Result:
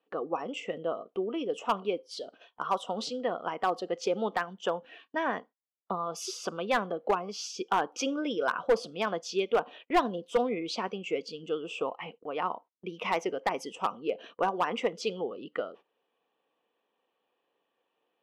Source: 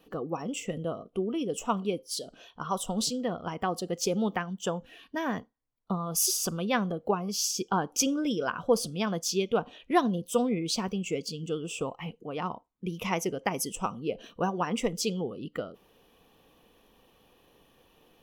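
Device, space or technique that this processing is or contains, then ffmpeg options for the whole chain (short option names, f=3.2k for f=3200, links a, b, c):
walkie-talkie: -af "highpass=420,lowpass=2.8k,asoftclip=type=hard:threshold=-21.5dB,agate=range=-17dB:threshold=-53dB:ratio=16:detection=peak,volume=3.5dB"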